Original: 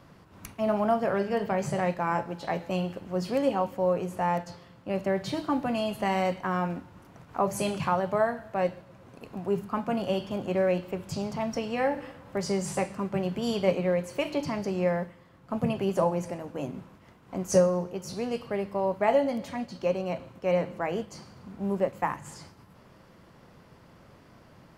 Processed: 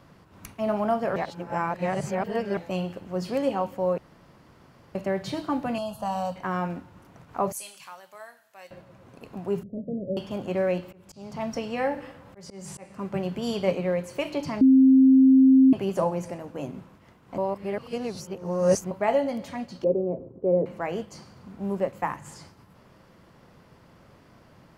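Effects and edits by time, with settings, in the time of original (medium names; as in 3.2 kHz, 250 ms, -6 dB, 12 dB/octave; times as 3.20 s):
1.16–2.57 s: reverse
3.98–4.95 s: room tone
5.78–6.36 s: static phaser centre 870 Hz, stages 4
7.52–8.71 s: differentiator
9.63–10.17 s: rippled Chebyshev low-pass 620 Hz, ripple 3 dB
10.89–13.08 s: slow attack 323 ms
14.61–15.73 s: bleep 264 Hz -12 dBFS
17.38–18.91 s: reverse
19.84–20.66 s: resonant low-pass 420 Hz, resonance Q 3.7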